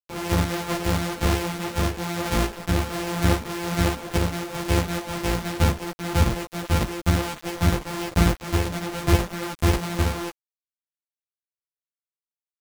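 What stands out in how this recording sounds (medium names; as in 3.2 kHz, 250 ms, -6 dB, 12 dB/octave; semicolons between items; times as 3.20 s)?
a buzz of ramps at a fixed pitch in blocks of 256 samples; tremolo saw up 1.2 Hz, depth 35%; a quantiser's noise floor 6-bit, dither none; a shimmering, thickened sound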